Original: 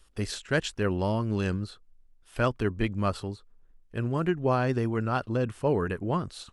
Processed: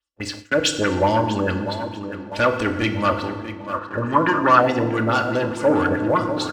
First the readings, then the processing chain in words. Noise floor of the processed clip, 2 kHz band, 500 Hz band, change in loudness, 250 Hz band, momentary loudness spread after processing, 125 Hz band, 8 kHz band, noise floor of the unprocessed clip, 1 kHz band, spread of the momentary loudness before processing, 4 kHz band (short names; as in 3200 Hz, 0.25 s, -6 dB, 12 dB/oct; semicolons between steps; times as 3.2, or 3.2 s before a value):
-38 dBFS, +11.5 dB, +8.5 dB, +8.5 dB, +7.5 dB, 13 LU, +2.0 dB, +11.5 dB, -59 dBFS, +13.5 dB, 10 LU, +12.0 dB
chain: soft clip -22 dBFS, distortion -14 dB; AGC gain up to 6 dB; comb 3.5 ms, depth 50%; LFO low-pass sine 4.7 Hz 520–7800 Hz; EQ curve 110 Hz 0 dB, 250 Hz -2 dB, 900 Hz +4 dB; on a send: tape echo 0.643 s, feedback 65%, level -10 dB, low-pass 2300 Hz; on the sum: FDN reverb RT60 1.4 s, low-frequency decay 1.55×, high-frequency decay 0.7×, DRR 6 dB; sample leveller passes 1; gate with hold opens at -20 dBFS; HPF 73 Hz; spectral gain 3.74–4.62, 920–1900 Hz +10 dB; gain -3.5 dB